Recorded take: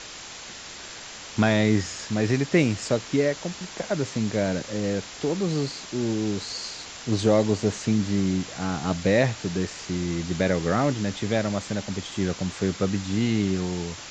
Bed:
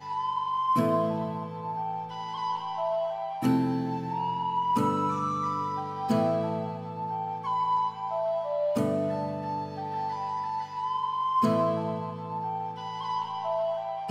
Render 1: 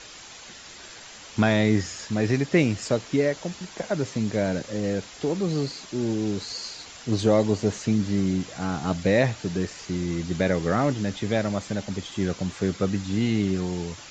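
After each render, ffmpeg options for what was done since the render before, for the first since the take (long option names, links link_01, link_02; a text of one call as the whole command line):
ffmpeg -i in.wav -af "afftdn=noise_reduction=6:noise_floor=-40" out.wav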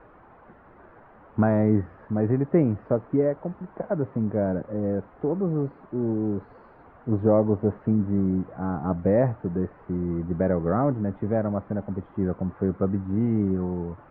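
ffmpeg -i in.wav -af "lowpass=frequency=1300:width=0.5412,lowpass=frequency=1300:width=1.3066,aemphasis=mode=reproduction:type=50fm" out.wav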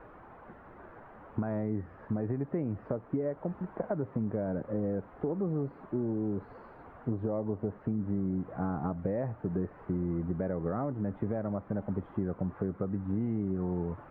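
ffmpeg -i in.wav -af "alimiter=limit=-17.5dB:level=0:latency=1:release=424,acompressor=threshold=-28dB:ratio=6" out.wav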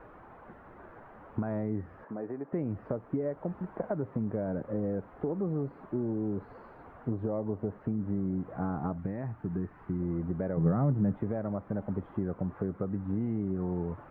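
ffmpeg -i in.wav -filter_complex "[0:a]asettb=1/sr,asplit=3[link_01][link_02][link_03];[link_01]atrim=end=2.044[link_04];[link_02]atrim=start=2.04:end=2.53,asetpts=PTS-STARTPTS,afade=type=in:duration=0.004:curve=qsin,afade=type=out:start_time=0.486:duration=0.004:curve=qsin,highpass=310,lowpass=2100[link_05];[link_03]atrim=start=2.526[link_06];[link_04][link_05]acrossfade=duration=0.004:curve1=hsin:curve2=qsin[link_07];[link_07][link_06]acrossfade=duration=0.004:curve1=qsin:curve2=hsin,asettb=1/sr,asplit=3[link_08][link_09][link_10];[link_08]atrim=end=8.984[link_11];[link_09]atrim=start=8.98:end=10,asetpts=PTS-STARTPTS,afade=type=in:duration=0.004:curve=qsin,afade=type=out:start_time=1.016:duration=0.004:curve=qsin,equalizer=frequency=530:width_type=o:width=0.61:gain=-12.5[link_12];[link_10]atrim=start=9.996[link_13];[link_11][link_12]acrossfade=duration=0.004:curve1=hsin:curve2=qsin[link_14];[link_14][link_13]acrossfade=duration=0.004:curve1=qsin:curve2=hsin,asettb=1/sr,asplit=3[link_15][link_16][link_17];[link_15]atrim=end=10.574[link_18];[link_16]atrim=start=10.57:end=11.15,asetpts=PTS-STARTPTS,afade=type=in:duration=0.004:curve=qsin,afade=type=out:start_time=0.576:duration=0.004:curve=qsin,equalizer=frequency=150:width_type=o:width=0.92:gain=13[link_19];[link_17]atrim=start=11.146[link_20];[link_18][link_19]acrossfade=duration=0.004:curve1=hsin:curve2=qsin[link_21];[link_21][link_20]acrossfade=duration=0.004:curve1=qsin:curve2=hsin" out.wav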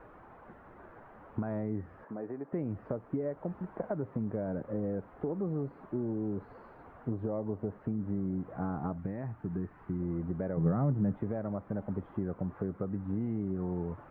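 ffmpeg -i in.wav -af "volume=-2dB" out.wav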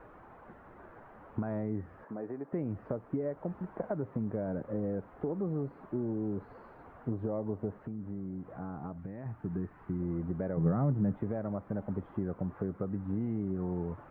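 ffmpeg -i in.wav -filter_complex "[0:a]asettb=1/sr,asplit=3[link_01][link_02][link_03];[link_01]atrim=end=7.784[link_04];[link_02]atrim=start=7.78:end=9.26,asetpts=PTS-STARTPTS,afade=type=in:duration=0.004:curve=qsin,afade=type=out:start_time=1.476:duration=0.004:curve=qsin,acompressor=threshold=-46dB:ratio=1.5:attack=3.2:release=140:knee=1:detection=peak[link_05];[link_03]atrim=start=9.256[link_06];[link_04][link_05]acrossfade=duration=0.004:curve1=hsin:curve2=qsin[link_07];[link_07][link_06]acrossfade=duration=0.004:curve1=qsin:curve2=hsin" out.wav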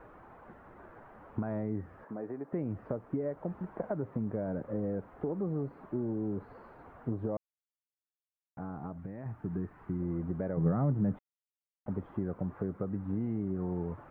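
ffmpeg -i in.wav -filter_complex "[0:a]asplit=5[link_01][link_02][link_03][link_04][link_05];[link_01]atrim=end=7.37,asetpts=PTS-STARTPTS,afade=type=out:start_time=7.366:duration=0.004:curve=hsin[link_06];[link_02]atrim=start=7.37:end=8.57,asetpts=PTS-STARTPTS,volume=0[link_07];[link_03]atrim=start=8.57:end=11.19,asetpts=PTS-STARTPTS,afade=type=in:duration=0.004:curve=hsin,afade=type=out:start_time=2.616:duration=0.004:curve=hsin[link_08];[link_04]atrim=start=11.19:end=11.86,asetpts=PTS-STARTPTS,volume=0[link_09];[link_05]atrim=start=11.86,asetpts=PTS-STARTPTS,afade=type=in:duration=0.004:curve=hsin[link_10];[link_06][link_07][link_08][link_09][link_10]concat=n=5:v=0:a=1" out.wav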